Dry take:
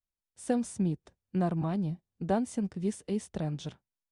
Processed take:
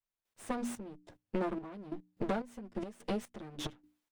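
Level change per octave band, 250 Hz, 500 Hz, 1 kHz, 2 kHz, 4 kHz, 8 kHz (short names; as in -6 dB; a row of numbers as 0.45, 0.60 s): -8.0, -4.5, -4.0, 0.0, +1.5, -6.5 dB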